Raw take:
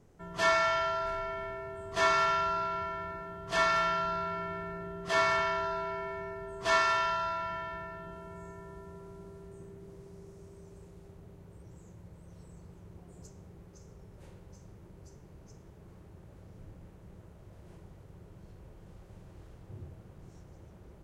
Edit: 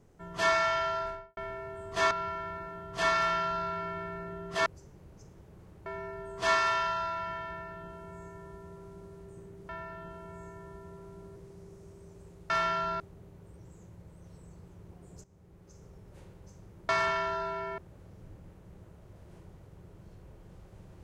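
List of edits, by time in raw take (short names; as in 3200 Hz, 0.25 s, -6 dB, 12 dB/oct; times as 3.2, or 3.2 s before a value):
0.98–1.37 studio fade out
2.11–2.65 cut
3.71–4.21 copy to 11.06
5.2–6.09 swap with 14.95–16.15
7.71–9.38 copy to 9.92
13.3–13.9 fade in linear, from -13.5 dB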